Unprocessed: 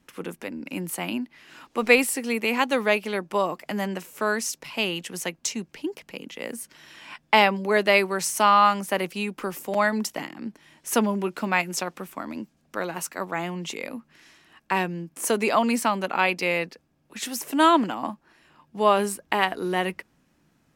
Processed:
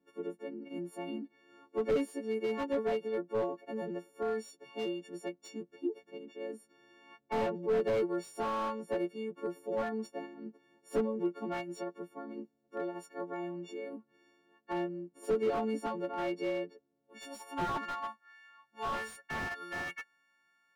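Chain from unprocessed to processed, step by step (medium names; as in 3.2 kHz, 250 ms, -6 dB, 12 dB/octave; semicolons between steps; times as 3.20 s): partials quantised in pitch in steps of 4 st; band-pass sweep 390 Hz -> 1.6 kHz, 16.94–17.92 s; slew-rate limiter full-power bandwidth 30 Hz; trim -2 dB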